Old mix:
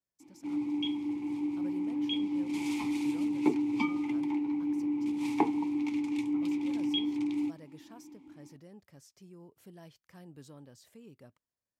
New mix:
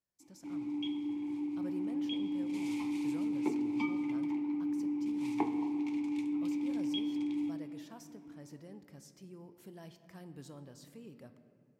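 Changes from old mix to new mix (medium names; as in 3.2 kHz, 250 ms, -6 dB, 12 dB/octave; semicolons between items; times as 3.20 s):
background -8.0 dB; reverb: on, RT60 2.5 s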